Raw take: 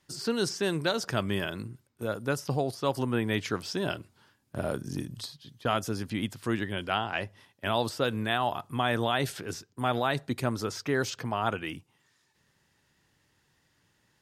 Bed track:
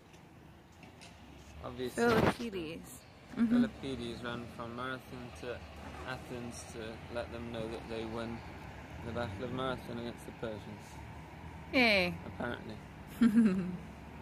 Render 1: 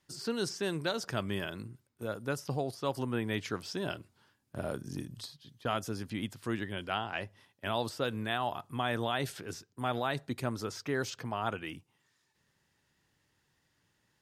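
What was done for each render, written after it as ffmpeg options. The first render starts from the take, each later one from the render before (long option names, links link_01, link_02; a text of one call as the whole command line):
ffmpeg -i in.wav -af "volume=-5dB" out.wav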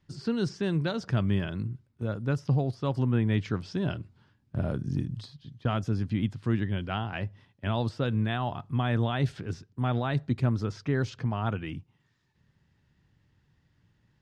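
ffmpeg -i in.wav -af "lowpass=5400,bass=frequency=250:gain=14,treble=frequency=4000:gain=-3" out.wav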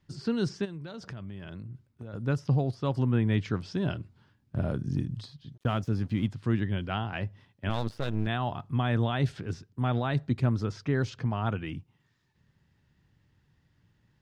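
ffmpeg -i in.wav -filter_complex "[0:a]asplit=3[link_01][link_02][link_03];[link_01]afade=type=out:start_time=0.64:duration=0.02[link_04];[link_02]acompressor=threshold=-37dB:ratio=8:attack=3.2:release=140:knee=1:detection=peak,afade=type=in:start_time=0.64:duration=0.02,afade=type=out:start_time=2.13:duration=0.02[link_05];[link_03]afade=type=in:start_time=2.13:duration=0.02[link_06];[link_04][link_05][link_06]amix=inputs=3:normalize=0,asplit=3[link_07][link_08][link_09];[link_07]afade=type=out:start_time=5.54:duration=0.02[link_10];[link_08]aeval=exprs='sgn(val(0))*max(abs(val(0))-0.00237,0)':channel_layout=same,afade=type=in:start_time=5.54:duration=0.02,afade=type=out:start_time=6.27:duration=0.02[link_11];[link_09]afade=type=in:start_time=6.27:duration=0.02[link_12];[link_10][link_11][link_12]amix=inputs=3:normalize=0,asettb=1/sr,asplit=3[link_13][link_14][link_15];[link_13]atrim=end=7.694[link_16];[link_14]atrim=start=7.69:end=8.27,asetpts=PTS-STARTPTS,afade=type=in:duration=0.004:curve=qsin,afade=type=out:start_time=0.576:duration=0.004:curve=qsin,aeval=exprs='max(val(0),0)':channel_layout=same[link_17];[link_15]atrim=start=8.266[link_18];[link_16][link_17]acrossfade=duration=0.004:curve1=hsin:curve2=qsin[link_19];[link_19][link_18]acrossfade=duration=0.004:curve1=qsin:curve2=hsin" out.wav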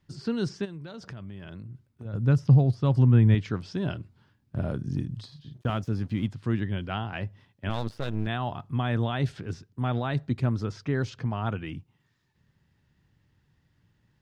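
ffmpeg -i in.wav -filter_complex "[0:a]asettb=1/sr,asplit=3[link_01][link_02][link_03];[link_01]atrim=end=2.054[link_04];[link_02]atrim=start=2.05:end=3.35,asetpts=PTS-STARTPTS,afade=type=in:duration=0.004:curve=qsin,afade=type=out:start_time=1.296:duration=0.004:curve=qsin,equalizer=frequency=110:width=0.68:gain=9[link_05];[link_03]atrim=start=3.346[link_06];[link_04][link_05]acrossfade=duration=0.004:curve1=hsin:curve2=qsin[link_07];[link_07][link_06]acrossfade=duration=0.004:curve1=qsin:curve2=hsin,asettb=1/sr,asplit=3[link_08][link_09][link_10];[link_08]atrim=end=5.284[link_11];[link_09]atrim=start=5.28:end=5.7,asetpts=PTS-STARTPTS,afade=type=in:duration=0.004:curve=qsin,afade=type=out:start_time=0.416:duration=0.004:curve=qsin,asplit=2[link_12][link_13];[link_13]adelay=40,volume=-4.5dB[link_14];[link_12][link_14]amix=inputs=2:normalize=0,atrim=end_sample=18522[link_15];[link_10]atrim=start=5.696[link_16];[link_11][link_15]acrossfade=duration=0.004:curve1=hsin:curve2=qsin[link_17];[link_17][link_16]acrossfade=duration=0.004:curve1=qsin:curve2=hsin" out.wav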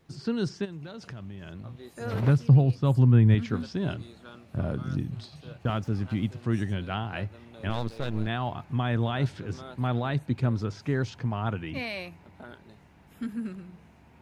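ffmpeg -i in.wav -i bed.wav -filter_complex "[1:a]volume=-7.5dB[link_01];[0:a][link_01]amix=inputs=2:normalize=0" out.wav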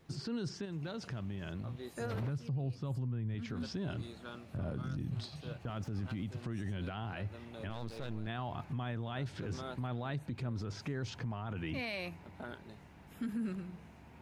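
ffmpeg -i in.wav -af "acompressor=threshold=-28dB:ratio=10,alimiter=level_in=6.5dB:limit=-24dB:level=0:latency=1:release=25,volume=-6.5dB" out.wav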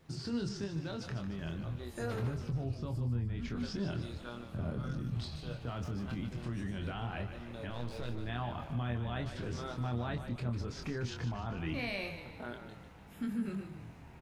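ffmpeg -i in.wav -filter_complex "[0:a]asplit=2[link_01][link_02];[link_02]adelay=25,volume=-5.5dB[link_03];[link_01][link_03]amix=inputs=2:normalize=0,asplit=7[link_04][link_05][link_06][link_07][link_08][link_09][link_10];[link_05]adelay=150,afreqshift=-38,volume=-9.5dB[link_11];[link_06]adelay=300,afreqshift=-76,volume=-15.5dB[link_12];[link_07]adelay=450,afreqshift=-114,volume=-21.5dB[link_13];[link_08]adelay=600,afreqshift=-152,volume=-27.6dB[link_14];[link_09]adelay=750,afreqshift=-190,volume=-33.6dB[link_15];[link_10]adelay=900,afreqshift=-228,volume=-39.6dB[link_16];[link_04][link_11][link_12][link_13][link_14][link_15][link_16]amix=inputs=7:normalize=0" out.wav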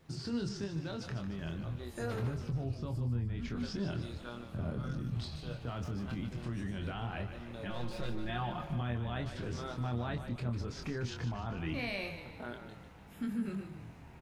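ffmpeg -i in.wav -filter_complex "[0:a]asettb=1/sr,asplit=3[link_01][link_02][link_03];[link_01]atrim=end=7.654[link_04];[link_02]atrim=start=7.65:end=8.81,asetpts=PTS-STARTPTS,afade=type=in:duration=0.004:curve=qsin,afade=type=out:start_time=1.156:duration=0.004:curve=qsin,aecho=1:1:5.6:0.81,atrim=end_sample=51156[link_05];[link_03]atrim=start=8.806[link_06];[link_04][link_05]acrossfade=duration=0.004:curve1=hsin:curve2=qsin[link_07];[link_07][link_06]acrossfade=duration=0.004:curve1=qsin:curve2=hsin" out.wav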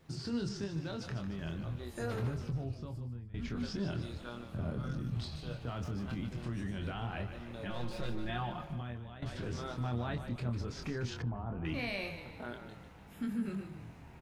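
ffmpeg -i in.wav -filter_complex "[0:a]asettb=1/sr,asplit=3[link_01][link_02][link_03];[link_01]atrim=end=11.224[link_04];[link_02]atrim=start=11.22:end=11.65,asetpts=PTS-STARTPTS,afade=type=in:duration=0.004:curve=qsin,afade=type=out:start_time=0.426:duration=0.004:curve=qsin,lowpass=1000[link_05];[link_03]atrim=start=11.646[link_06];[link_04][link_05]acrossfade=duration=0.004:curve1=hsin:curve2=qsin[link_07];[link_07][link_06]acrossfade=duration=0.004:curve1=qsin:curve2=hsin,asplit=3[link_08][link_09][link_10];[link_08]atrim=end=3.34,asetpts=PTS-STARTPTS,afade=type=out:start_time=2.43:duration=0.91:silence=0.158489[link_11];[link_09]atrim=start=3.34:end=9.22,asetpts=PTS-STARTPTS,afade=type=in:duration=0.004:curve=hsin:silence=0.158489,afade=type=out:start_time=4.98:duration=0.9:silence=0.188365[link_12];[link_10]atrim=start=9.22,asetpts=PTS-STARTPTS,afade=type=in:duration=0.004:curve=hsin:silence=0.188365[link_13];[link_11][link_12][link_13]concat=n=3:v=0:a=1" out.wav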